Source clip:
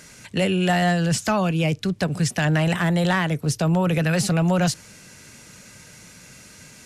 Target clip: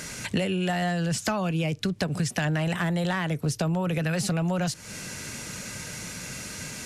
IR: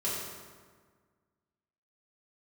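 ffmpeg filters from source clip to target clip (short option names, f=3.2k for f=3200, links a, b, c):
-af "acompressor=threshold=-32dB:ratio=12,volume=8.5dB"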